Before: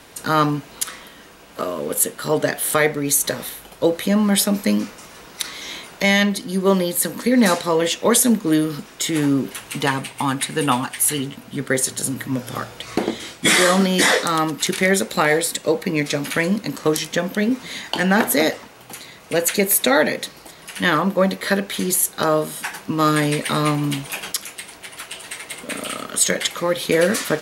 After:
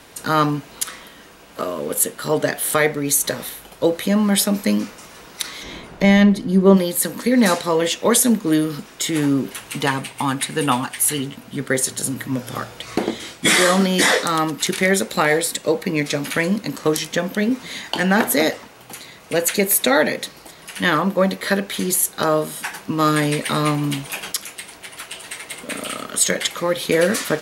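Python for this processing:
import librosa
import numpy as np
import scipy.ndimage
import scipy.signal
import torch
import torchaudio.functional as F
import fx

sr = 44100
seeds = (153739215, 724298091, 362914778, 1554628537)

y = fx.tilt_eq(x, sr, slope=-3.0, at=(5.62, 6.76), fade=0.02)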